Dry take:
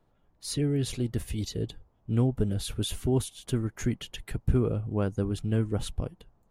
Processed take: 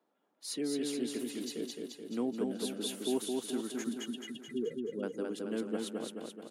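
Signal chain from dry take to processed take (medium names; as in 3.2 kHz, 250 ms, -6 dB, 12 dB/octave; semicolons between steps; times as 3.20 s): 3.84–5.03 s: spectral contrast enhancement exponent 2.5; steep high-pass 220 Hz 36 dB/octave; feedback delay 215 ms, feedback 57%, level -3 dB; trim -5 dB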